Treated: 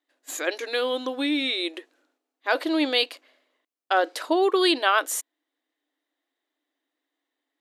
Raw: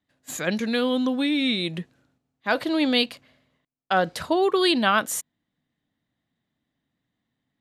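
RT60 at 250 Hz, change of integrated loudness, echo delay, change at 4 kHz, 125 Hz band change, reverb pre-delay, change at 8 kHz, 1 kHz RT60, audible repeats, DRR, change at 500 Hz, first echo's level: none, -1.0 dB, none, 0.0 dB, under -30 dB, none, 0.0 dB, none, none, none, 0.0 dB, none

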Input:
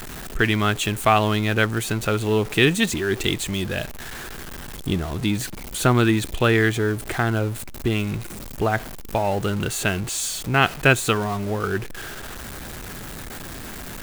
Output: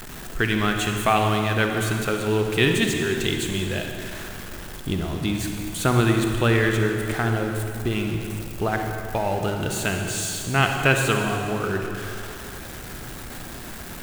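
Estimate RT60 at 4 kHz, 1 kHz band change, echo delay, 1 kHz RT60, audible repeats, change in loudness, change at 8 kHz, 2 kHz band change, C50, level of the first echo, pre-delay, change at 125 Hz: 2.2 s, -1.0 dB, none, 2.6 s, none, -1.5 dB, -1.5 dB, -1.0 dB, 3.5 dB, none, 38 ms, -0.5 dB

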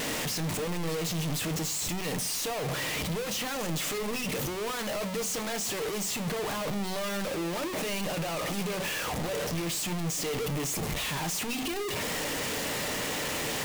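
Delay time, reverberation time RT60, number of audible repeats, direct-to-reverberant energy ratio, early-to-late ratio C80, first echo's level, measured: none, 0.45 s, none, 9.5 dB, 23.0 dB, none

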